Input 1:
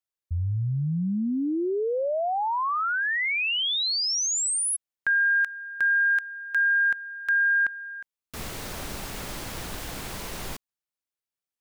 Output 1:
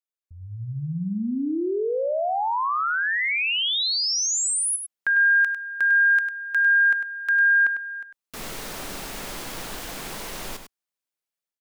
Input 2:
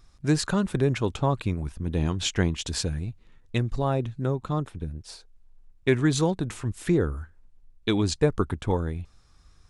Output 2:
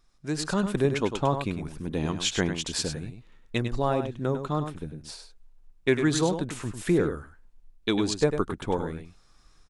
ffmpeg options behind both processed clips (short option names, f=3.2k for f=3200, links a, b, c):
-filter_complex "[0:a]equalizer=f=75:w=0.95:g=-13,dynaudnorm=f=300:g=3:m=9dB,asplit=2[a][b];[b]aecho=0:1:100:0.376[c];[a][c]amix=inputs=2:normalize=0,volume=-7.5dB"